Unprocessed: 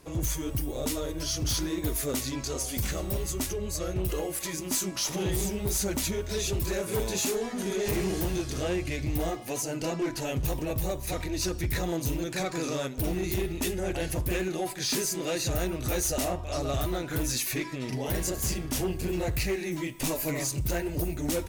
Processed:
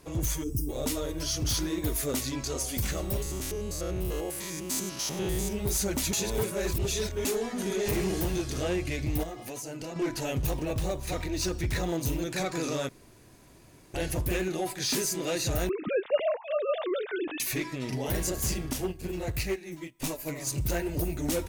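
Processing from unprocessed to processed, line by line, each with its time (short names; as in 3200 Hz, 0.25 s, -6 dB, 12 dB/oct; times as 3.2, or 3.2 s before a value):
0.44–0.69 spectral gain 470–4800 Hz -20 dB
3.22–5.53 stepped spectrum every 0.1 s
6.13–7.25 reverse
9.23–9.96 compressor, threshold -35 dBFS
10.5–12.03 median filter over 3 samples
12.89–13.94 room tone
15.69–17.4 sine-wave speech
18.73–20.47 upward expander 2.5:1, over -40 dBFS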